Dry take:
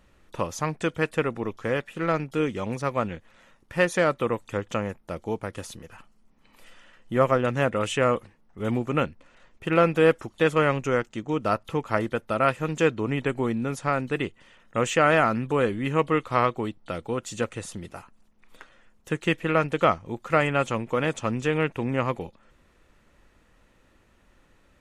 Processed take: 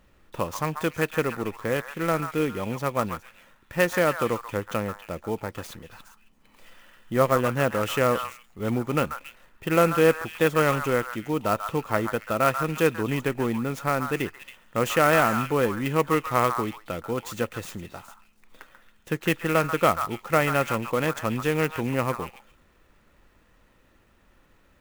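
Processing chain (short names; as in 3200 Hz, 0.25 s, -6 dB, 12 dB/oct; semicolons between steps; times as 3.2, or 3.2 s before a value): delay with a stepping band-pass 0.138 s, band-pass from 1200 Hz, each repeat 1.4 oct, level -5 dB; clock jitter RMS 0.022 ms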